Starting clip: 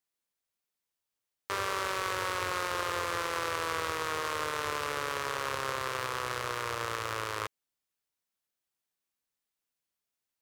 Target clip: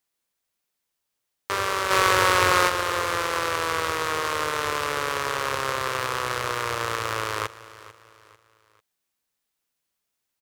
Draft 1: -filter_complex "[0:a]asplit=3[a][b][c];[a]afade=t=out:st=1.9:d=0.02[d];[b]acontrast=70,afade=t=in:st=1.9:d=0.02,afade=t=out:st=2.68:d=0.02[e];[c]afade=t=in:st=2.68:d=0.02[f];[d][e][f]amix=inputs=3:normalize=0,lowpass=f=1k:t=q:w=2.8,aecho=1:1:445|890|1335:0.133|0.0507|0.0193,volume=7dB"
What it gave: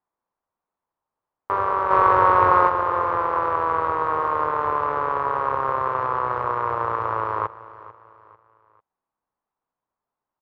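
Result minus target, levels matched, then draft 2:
1000 Hz band +3.5 dB
-filter_complex "[0:a]asplit=3[a][b][c];[a]afade=t=out:st=1.9:d=0.02[d];[b]acontrast=70,afade=t=in:st=1.9:d=0.02,afade=t=out:st=2.68:d=0.02[e];[c]afade=t=in:st=2.68:d=0.02[f];[d][e][f]amix=inputs=3:normalize=0,aecho=1:1:445|890|1335:0.133|0.0507|0.0193,volume=7dB"

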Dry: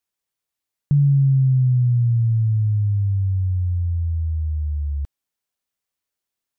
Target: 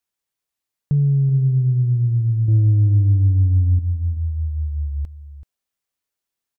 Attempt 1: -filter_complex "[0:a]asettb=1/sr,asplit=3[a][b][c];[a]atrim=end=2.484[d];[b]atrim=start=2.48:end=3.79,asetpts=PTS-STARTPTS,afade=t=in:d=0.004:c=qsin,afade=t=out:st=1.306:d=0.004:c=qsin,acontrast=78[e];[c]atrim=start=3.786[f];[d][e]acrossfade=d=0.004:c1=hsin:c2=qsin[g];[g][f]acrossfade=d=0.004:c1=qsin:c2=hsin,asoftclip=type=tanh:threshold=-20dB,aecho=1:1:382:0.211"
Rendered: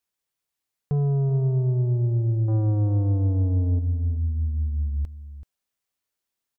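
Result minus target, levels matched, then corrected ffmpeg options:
soft clip: distortion +13 dB
-filter_complex "[0:a]asettb=1/sr,asplit=3[a][b][c];[a]atrim=end=2.484[d];[b]atrim=start=2.48:end=3.79,asetpts=PTS-STARTPTS,afade=t=in:d=0.004:c=qsin,afade=t=out:st=1.306:d=0.004:c=qsin,acontrast=78[e];[c]atrim=start=3.786[f];[d][e]acrossfade=d=0.004:c1=hsin:c2=qsin[g];[g][f]acrossfade=d=0.004:c1=qsin:c2=hsin,asoftclip=type=tanh:threshold=-9dB,aecho=1:1:382:0.211"

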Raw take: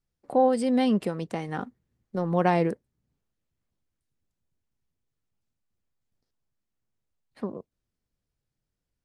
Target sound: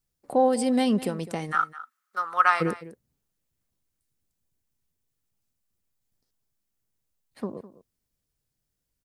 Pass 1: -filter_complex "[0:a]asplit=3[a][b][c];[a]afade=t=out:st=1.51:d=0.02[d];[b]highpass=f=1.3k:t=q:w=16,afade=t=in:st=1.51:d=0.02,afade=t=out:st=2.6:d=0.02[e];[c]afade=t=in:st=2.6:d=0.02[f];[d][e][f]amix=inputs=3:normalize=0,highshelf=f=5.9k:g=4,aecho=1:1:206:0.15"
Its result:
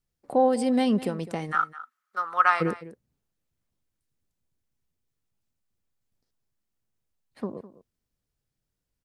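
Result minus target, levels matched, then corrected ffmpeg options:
8000 Hz band -5.0 dB
-filter_complex "[0:a]asplit=3[a][b][c];[a]afade=t=out:st=1.51:d=0.02[d];[b]highpass=f=1.3k:t=q:w=16,afade=t=in:st=1.51:d=0.02,afade=t=out:st=2.6:d=0.02[e];[c]afade=t=in:st=2.6:d=0.02[f];[d][e][f]amix=inputs=3:normalize=0,highshelf=f=5.9k:g=12,aecho=1:1:206:0.15"

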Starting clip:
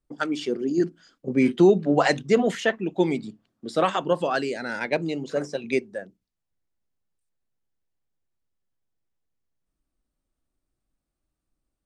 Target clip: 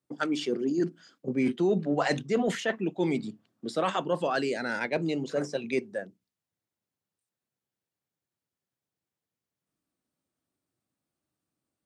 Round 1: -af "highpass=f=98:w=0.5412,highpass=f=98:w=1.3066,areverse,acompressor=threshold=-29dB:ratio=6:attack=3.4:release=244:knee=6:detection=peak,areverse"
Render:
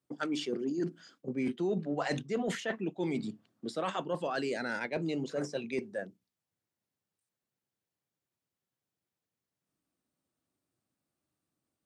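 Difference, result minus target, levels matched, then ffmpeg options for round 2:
compressor: peak gain reduction +6.5 dB
-af "highpass=f=98:w=0.5412,highpass=f=98:w=1.3066,areverse,acompressor=threshold=-21dB:ratio=6:attack=3.4:release=244:knee=6:detection=peak,areverse"

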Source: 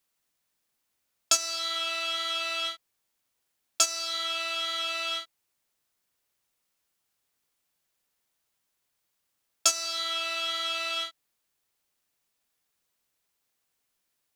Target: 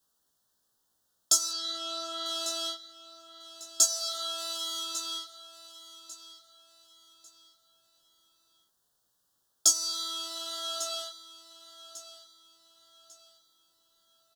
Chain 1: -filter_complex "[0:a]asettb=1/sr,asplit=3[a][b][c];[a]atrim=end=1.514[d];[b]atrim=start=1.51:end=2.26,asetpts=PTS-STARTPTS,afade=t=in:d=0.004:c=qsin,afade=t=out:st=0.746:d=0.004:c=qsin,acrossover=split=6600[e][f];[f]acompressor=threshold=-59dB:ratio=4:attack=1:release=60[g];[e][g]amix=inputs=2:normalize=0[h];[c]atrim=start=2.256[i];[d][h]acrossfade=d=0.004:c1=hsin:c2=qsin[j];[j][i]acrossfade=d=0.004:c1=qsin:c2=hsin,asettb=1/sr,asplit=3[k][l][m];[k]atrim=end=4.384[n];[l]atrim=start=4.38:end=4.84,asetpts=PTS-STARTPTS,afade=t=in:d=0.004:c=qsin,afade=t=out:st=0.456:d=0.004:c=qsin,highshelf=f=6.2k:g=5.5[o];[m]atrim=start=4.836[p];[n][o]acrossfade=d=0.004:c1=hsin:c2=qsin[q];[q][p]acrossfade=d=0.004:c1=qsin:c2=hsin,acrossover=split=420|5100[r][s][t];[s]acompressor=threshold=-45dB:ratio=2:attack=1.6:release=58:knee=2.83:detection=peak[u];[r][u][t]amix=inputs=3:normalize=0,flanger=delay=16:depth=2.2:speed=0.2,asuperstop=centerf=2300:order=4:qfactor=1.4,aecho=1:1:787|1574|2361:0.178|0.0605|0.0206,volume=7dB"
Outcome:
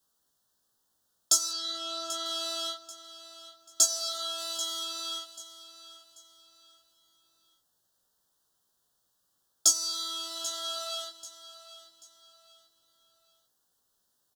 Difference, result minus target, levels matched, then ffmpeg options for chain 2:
echo 0.36 s early
-filter_complex "[0:a]asettb=1/sr,asplit=3[a][b][c];[a]atrim=end=1.514[d];[b]atrim=start=1.51:end=2.26,asetpts=PTS-STARTPTS,afade=t=in:d=0.004:c=qsin,afade=t=out:st=0.746:d=0.004:c=qsin,acrossover=split=6600[e][f];[f]acompressor=threshold=-59dB:ratio=4:attack=1:release=60[g];[e][g]amix=inputs=2:normalize=0[h];[c]atrim=start=2.256[i];[d][h]acrossfade=d=0.004:c1=hsin:c2=qsin[j];[j][i]acrossfade=d=0.004:c1=qsin:c2=hsin,asettb=1/sr,asplit=3[k][l][m];[k]atrim=end=4.384[n];[l]atrim=start=4.38:end=4.84,asetpts=PTS-STARTPTS,afade=t=in:d=0.004:c=qsin,afade=t=out:st=0.456:d=0.004:c=qsin,highshelf=f=6.2k:g=5.5[o];[m]atrim=start=4.836[p];[n][o]acrossfade=d=0.004:c1=hsin:c2=qsin[q];[q][p]acrossfade=d=0.004:c1=qsin:c2=hsin,acrossover=split=420|5100[r][s][t];[s]acompressor=threshold=-45dB:ratio=2:attack=1.6:release=58:knee=2.83:detection=peak[u];[r][u][t]amix=inputs=3:normalize=0,flanger=delay=16:depth=2.2:speed=0.2,asuperstop=centerf=2300:order=4:qfactor=1.4,aecho=1:1:1147|2294|3441:0.178|0.0605|0.0206,volume=7dB"

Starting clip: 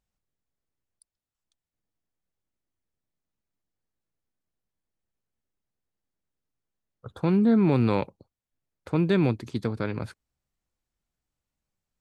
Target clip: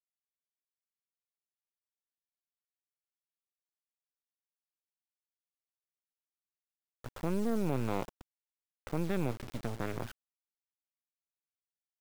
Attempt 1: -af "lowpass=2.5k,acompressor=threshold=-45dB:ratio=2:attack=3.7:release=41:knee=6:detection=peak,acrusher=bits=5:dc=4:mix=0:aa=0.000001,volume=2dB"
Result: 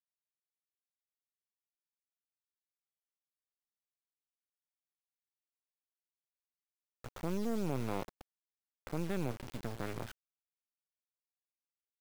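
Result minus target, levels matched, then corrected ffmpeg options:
compressor: peak gain reduction +3.5 dB
-af "lowpass=2.5k,acompressor=threshold=-38dB:ratio=2:attack=3.7:release=41:knee=6:detection=peak,acrusher=bits=5:dc=4:mix=0:aa=0.000001,volume=2dB"

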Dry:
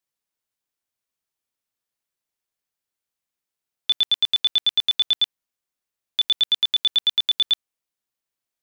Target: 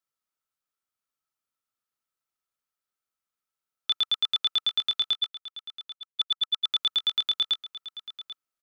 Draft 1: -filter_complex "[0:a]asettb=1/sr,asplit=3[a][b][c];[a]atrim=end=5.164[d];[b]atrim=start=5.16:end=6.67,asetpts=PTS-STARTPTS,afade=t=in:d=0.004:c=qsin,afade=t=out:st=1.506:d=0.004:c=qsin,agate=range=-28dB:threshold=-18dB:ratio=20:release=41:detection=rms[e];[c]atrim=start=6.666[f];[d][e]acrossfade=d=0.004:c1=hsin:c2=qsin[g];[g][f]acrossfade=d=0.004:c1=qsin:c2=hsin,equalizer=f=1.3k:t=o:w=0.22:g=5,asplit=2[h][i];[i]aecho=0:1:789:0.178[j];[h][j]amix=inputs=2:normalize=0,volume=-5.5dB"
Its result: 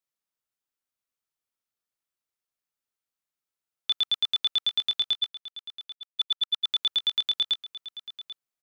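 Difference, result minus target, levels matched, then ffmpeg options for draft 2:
1000 Hz band -5.0 dB
-filter_complex "[0:a]asettb=1/sr,asplit=3[a][b][c];[a]atrim=end=5.164[d];[b]atrim=start=5.16:end=6.67,asetpts=PTS-STARTPTS,afade=t=in:d=0.004:c=qsin,afade=t=out:st=1.506:d=0.004:c=qsin,agate=range=-28dB:threshold=-18dB:ratio=20:release=41:detection=rms[e];[c]atrim=start=6.666[f];[d][e]acrossfade=d=0.004:c1=hsin:c2=qsin[g];[g][f]acrossfade=d=0.004:c1=qsin:c2=hsin,equalizer=f=1.3k:t=o:w=0.22:g=14.5,asplit=2[h][i];[i]aecho=0:1:789:0.178[j];[h][j]amix=inputs=2:normalize=0,volume=-5.5dB"

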